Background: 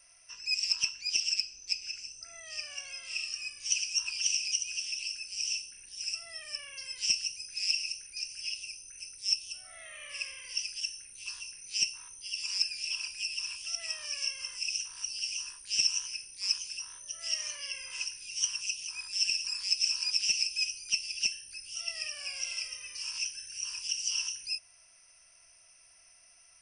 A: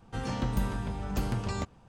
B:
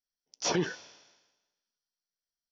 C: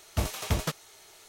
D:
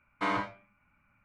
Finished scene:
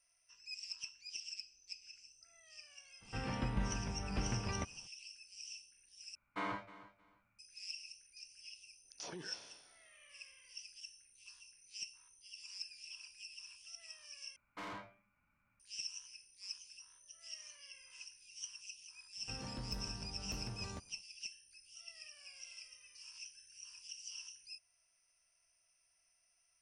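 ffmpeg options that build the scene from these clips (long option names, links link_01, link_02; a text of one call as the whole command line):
ffmpeg -i bed.wav -i cue0.wav -i cue1.wav -i cue2.wav -i cue3.wav -filter_complex "[1:a]asplit=2[link_01][link_02];[4:a]asplit=2[link_03][link_04];[0:a]volume=-16.5dB[link_05];[link_01]lowpass=frequency=2500:width_type=q:width=1.9[link_06];[link_03]aecho=1:1:311|622:0.141|0.0283[link_07];[2:a]acompressor=threshold=-41dB:ratio=6:attack=3.2:release=140:knee=1:detection=peak[link_08];[link_04]asoftclip=type=tanh:threshold=-33.5dB[link_09];[link_02]volume=25dB,asoftclip=hard,volume=-25dB[link_10];[link_05]asplit=3[link_11][link_12][link_13];[link_11]atrim=end=6.154[link_14];[link_07]atrim=end=1.24,asetpts=PTS-STARTPTS,volume=-10dB[link_15];[link_12]atrim=start=7.386:end=14.364[link_16];[link_09]atrim=end=1.24,asetpts=PTS-STARTPTS,volume=-9.5dB[link_17];[link_13]atrim=start=15.596[link_18];[link_06]atrim=end=1.88,asetpts=PTS-STARTPTS,volume=-7.5dB,afade=type=in:duration=0.02,afade=type=out:start_time=1.86:duration=0.02,adelay=3000[link_19];[link_08]atrim=end=2.51,asetpts=PTS-STARTPTS,volume=-4dB,afade=type=in:duration=0.004:curve=hsin,afade=type=out:start_time=2.506:duration=0.004:curve=hsin,adelay=378378S[link_20];[link_10]atrim=end=1.88,asetpts=PTS-STARTPTS,volume=-14dB,afade=type=in:duration=0.05,afade=type=out:start_time=1.83:duration=0.05,adelay=19150[link_21];[link_14][link_15]acrossfade=duration=0.004:curve1=hsin:curve2=hsin[link_22];[link_22][link_16]acrossfade=duration=0.004:curve1=hsin:curve2=hsin[link_23];[link_23][link_17]acrossfade=duration=0.004:curve1=hsin:curve2=hsin[link_24];[link_24][link_18]acrossfade=duration=0.004:curve1=hsin:curve2=hsin[link_25];[link_25][link_19][link_20][link_21]amix=inputs=4:normalize=0" out.wav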